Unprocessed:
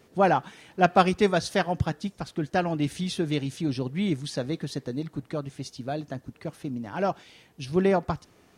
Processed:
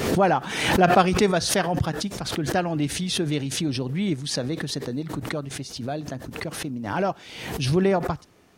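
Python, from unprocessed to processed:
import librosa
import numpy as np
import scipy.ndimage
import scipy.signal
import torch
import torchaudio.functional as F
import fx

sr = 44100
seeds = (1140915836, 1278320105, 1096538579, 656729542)

y = fx.pre_swell(x, sr, db_per_s=51.0)
y = y * 10.0 ** (1.0 / 20.0)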